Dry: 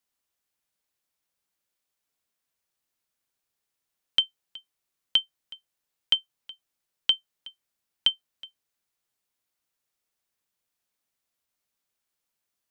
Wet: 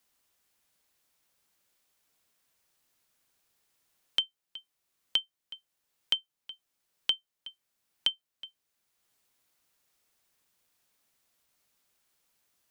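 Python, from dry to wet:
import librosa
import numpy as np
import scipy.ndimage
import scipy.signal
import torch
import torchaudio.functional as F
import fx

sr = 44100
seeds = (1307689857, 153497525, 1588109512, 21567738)

y = fx.band_squash(x, sr, depth_pct=40)
y = y * 10.0 ** (-3.5 / 20.0)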